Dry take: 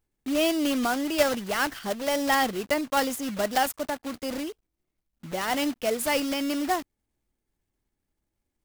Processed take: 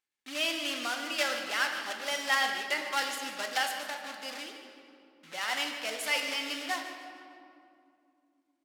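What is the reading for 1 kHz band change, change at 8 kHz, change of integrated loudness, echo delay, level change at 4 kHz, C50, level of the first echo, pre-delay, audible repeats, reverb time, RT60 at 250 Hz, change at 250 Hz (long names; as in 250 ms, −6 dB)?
−6.5 dB, −4.5 dB, −4.5 dB, 151 ms, +0.5 dB, 4.5 dB, −13.0 dB, 4 ms, 1, 2.5 s, 3.9 s, −16.0 dB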